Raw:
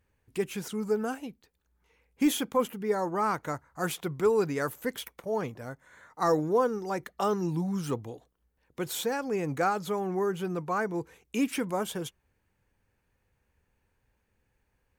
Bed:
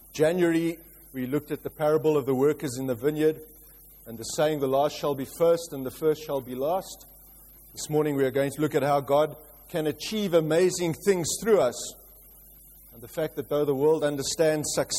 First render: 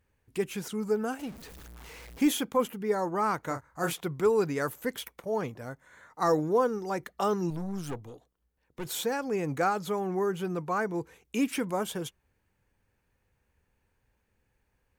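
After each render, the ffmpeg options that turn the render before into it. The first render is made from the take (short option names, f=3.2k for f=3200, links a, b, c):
-filter_complex "[0:a]asettb=1/sr,asplit=3[a][b][c];[a]atrim=end=1.194[d];[b]atrim=start=1.19:end=2.25,asetpts=PTS-STARTPTS,afade=t=in:d=0.004:c=qsin,afade=t=out:st=1.056:d=0.004:c=qsin,aeval=exprs='val(0)+0.5*0.00841*sgn(val(0))':c=same[e];[c]atrim=start=2.246[f];[d][e]acrossfade=d=0.004:c1=hsin:c2=qsin[g];[g][f]acrossfade=d=0.004:c1=qsin:c2=hsin,asettb=1/sr,asplit=3[h][i][j];[h]atrim=end=3.474[k];[i]atrim=start=3.47:end=3.93,asetpts=PTS-STARTPTS,afade=t=in:d=0.004:c=qsin,afade=t=out:st=0.456:d=0.004:c=qsin,asplit=2[l][m];[m]adelay=30,volume=-7dB[n];[l][n]amix=inputs=2:normalize=0,atrim=end_sample=20286[o];[j]atrim=start=3.926[p];[k][o]acrossfade=d=0.004:c1=hsin:c2=qsin[q];[q][p]acrossfade=d=0.004:c1=qsin:c2=hsin,asettb=1/sr,asplit=3[r][s][t];[r]atrim=end=7.504[u];[s]atrim=start=7.5:end=8.85,asetpts=PTS-STARTPTS,afade=t=in:d=0.004:c=qsin,afade=t=out:st=1.346:d=0.004:c=qsin,aeval=exprs='(tanh(35.5*val(0)+0.65)-tanh(0.65))/35.5':c=same[v];[t]atrim=start=8.846[w];[u][v]acrossfade=d=0.004:c1=hsin:c2=qsin[x];[x][w]acrossfade=d=0.004:c1=qsin:c2=hsin"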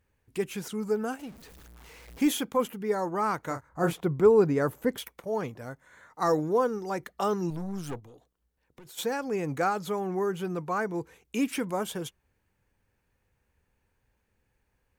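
-filter_complex "[0:a]asettb=1/sr,asplit=3[a][b][c];[a]atrim=end=3.694[d];[b]atrim=start=3.69:end=4.98,asetpts=PTS-STARTPTS,afade=t=in:d=0.004:c=qsin,afade=t=out:st=1.286:d=0.004:c=qsin,tiltshelf=f=1.4k:g=6.5[e];[c]atrim=start=4.976[f];[d][e]acrossfade=d=0.004:c1=hsin:c2=qsin[g];[g][f]acrossfade=d=0.004:c1=qsin:c2=hsin,asplit=3[h][i][j];[h]afade=t=out:st=7.99:d=0.02[k];[i]acompressor=threshold=-47dB:ratio=6:attack=3.2:release=140:knee=1:detection=peak,afade=t=in:st=7.99:d=0.02,afade=t=out:st=8.97:d=0.02[l];[j]afade=t=in:st=8.97:d=0.02[m];[k][l][m]amix=inputs=3:normalize=0,asplit=3[n][o][p];[n]atrim=end=1.162[q];[o]atrim=start=1.158:end=2.082,asetpts=PTS-STARTPTS,volume=-3.5dB[r];[p]atrim=start=2.078[s];[q][r]acrossfade=d=0.004:c1=hsin:c2=hsin[t];[t][s]acrossfade=d=0.004:c1=hsin:c2=hsin"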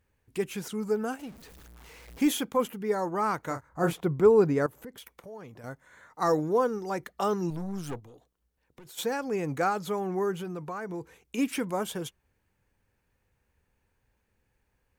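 -filter_complex "[0:a]asettb=1/sr,asplit=3[a][b][c];[a]atrim=end=4.664[d];[b]atrim=start=4.66:end=5.64,asetpts=PTS-STARTPTS,afade=t=in:d=0.004:c=qsin,afade=t=out:st=0.976:d=0.004:c=qsin,acompressor=threshold=-45dB:ratio=3:attack=3.2:release=140:knee=1:detection=peak[e];[c]atrim=start=5.636[f];[d][e]acrossfade=d=0.004:c1=hsin:c2=qsin[g];[g][f]acrossfade=d=0.004:c1=qsin:c2=hsin,asplit=3[h][i][j];[h]afade=t=out:st=10.39:d=0.02[k];[i]acompressor=threshold=-32dB:ratio=6:attack=3.2:release=140:knee=1:detection=peak,afade=t=in:st=10.39:d=0.02,afade=t=out:st=11.37:d=0.02[l];[j]afade=t=in:st=11.37:d=0.02[m];[k][l][m]amix=inputs=3:normalize=0"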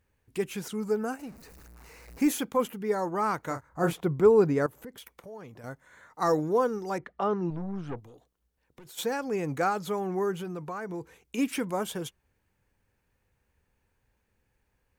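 -filter_complex "[0:a]asettb=1/sr,asplit=3[a][b][c];[a]atrim=end=0.994[d];[b]atrim=start=0.99:end=2.39,asetpts=PTS-STARTPTS,afade=t=in:d=0.004:c=qsin,afade=t=out:st=1.396:d=0.004:c=qsin,equalizer=f=3.3k:t=o:w=0.28:g=-13.5[e];[c]atrim=start=2.386[f];[d][e]acrossfade=d=0.004:c1=hsin:c2=qsin[g];[g][f]acrossfade=d=0.004:c1=qsin:c2=hsin,asettb=1/sr,asplit=3[h][i][j];[h]atrim=end=6.984[k];[i]atrim=start=6.98:end=7.98,asetpts=PTS-STARTPTS,afade=t=in:d=0.004:c=qsin,afade=t=out:st=0.996:d=0.004:c=qsin,lowpass=2.3k[l];[j]atrim=start=7.976[m];[k][l]acrossfade=d=0.004:c1=hsin:c2=qsin[n];[n][m]acrossfade=d=0.004:c1=qsin:c2=hsin"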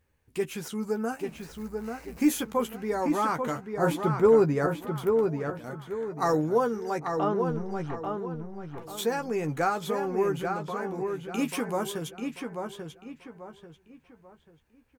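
-filter_complex "[0:a]asplit=2[a][b];[b]adelay=13,volume=-7.5dB[c];[a][c]amix=inputs=2:normalize=0,asplit=2[d][e];[e]adelay=839,lowpass=f=3.5k:p=1,volume=-5dB,asplit=2[f][g];[g]adelay=839,lowpass=f=3.5k:p=1,volume=0.35,asplit=2[h][i];[i]adelay=839,lowpass=f=3.5k:p=1,volume=0.35,asplit=2[j][k];[k]adelay=839,lowpass=f=3.5k:p=1,volume=0.35[l];[f][h][j][l]amix=inputs=4:normalize=0[m];[d][m]amix=inputs=2:normalize=0"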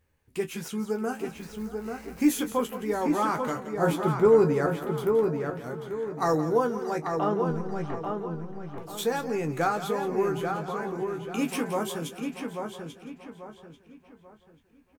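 -filter_complex "[0:a]asplit=2[a][b];[b]adelay=24,volume=-11dB[c];[a][c]amix=inputs=2:normalize=0,aecho=1:1:172|628:0.237|0.126"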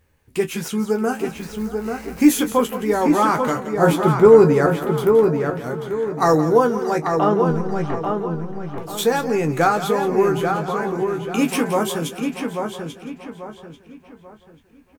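-af "volume=9dB"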